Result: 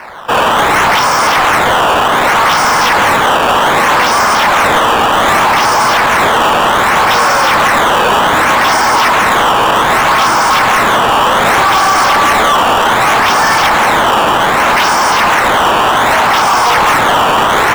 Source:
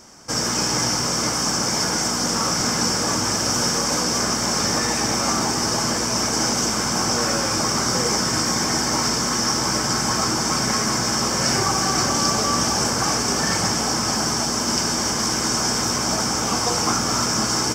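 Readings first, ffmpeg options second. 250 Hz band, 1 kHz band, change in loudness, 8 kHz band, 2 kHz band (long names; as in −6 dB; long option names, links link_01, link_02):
+4.0 dB, +18.0 dB, +11.0 dB, −1.0 dB, +17.5 dB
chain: -filter_complex "[0:a]equalizer=frequency=930:width_type=o:width=0.77:gain=5.5,acrusher=samples=12:mix=1:aa=0.000001:lfo=1:lforange=19.2:lforate=0.65,acrossover=split=580 3000:gain=0.141 1 0.158[link_01][link_02][link_03];[link_01][link_02][link_03]amix=inputs=3:normalize=0,apsyclip=24dB,asoftclip=type=hard:threshold=-2dB,volume=-4dB"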